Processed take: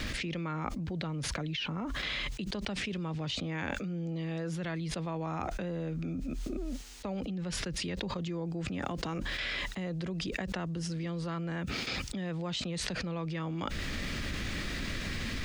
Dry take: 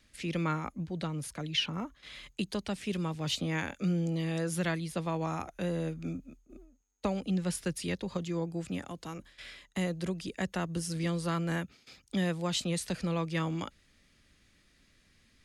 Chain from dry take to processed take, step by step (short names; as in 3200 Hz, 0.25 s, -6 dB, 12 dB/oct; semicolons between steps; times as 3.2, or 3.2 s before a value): added noise violet -64 dBFS; air absorption 130 m; fast leveller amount 100%; gain -8.5 dB